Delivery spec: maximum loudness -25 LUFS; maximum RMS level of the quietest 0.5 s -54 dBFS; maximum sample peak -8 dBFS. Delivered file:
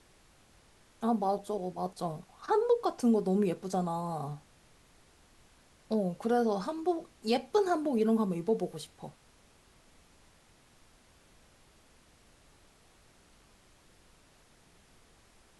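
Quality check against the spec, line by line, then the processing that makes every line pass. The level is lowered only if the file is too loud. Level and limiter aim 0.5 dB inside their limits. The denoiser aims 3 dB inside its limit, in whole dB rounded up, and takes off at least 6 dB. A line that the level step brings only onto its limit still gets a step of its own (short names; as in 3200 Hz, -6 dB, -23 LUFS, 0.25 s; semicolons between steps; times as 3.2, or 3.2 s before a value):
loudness -31.5 LUFS: OK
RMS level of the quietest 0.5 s -62 dBFS: OK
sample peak -15.5 dBFS: OK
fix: none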